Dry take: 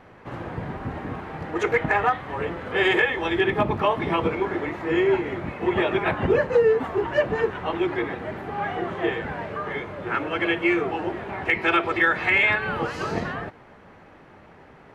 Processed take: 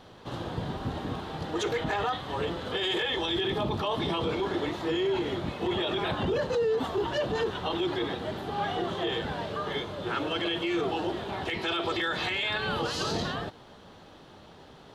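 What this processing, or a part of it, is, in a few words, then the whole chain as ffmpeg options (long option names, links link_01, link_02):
over-bright horn tweeter: -af "highshelf=frequency=2800:width_type=q:width=3:gain=8,alimiter=limit=-19.5dB:level=0:latency=1:release=14,volume=-1.5dB"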